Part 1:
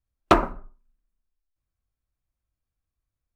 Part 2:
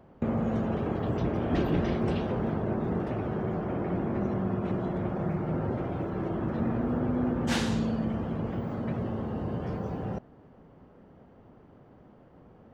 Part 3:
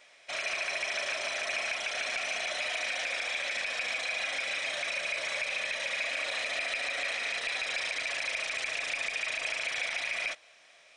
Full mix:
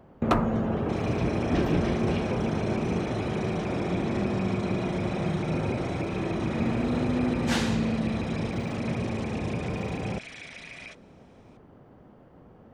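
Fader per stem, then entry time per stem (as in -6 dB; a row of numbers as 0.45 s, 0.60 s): -7.5 dB, +2.0 dB, -10.5 dB; 0.00 s, 0.00 s, 0.60 s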